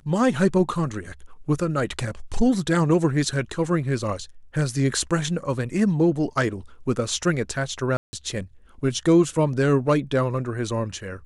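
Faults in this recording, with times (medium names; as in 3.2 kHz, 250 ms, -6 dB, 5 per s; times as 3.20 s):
7.97–8.13 s: dropout 160 ms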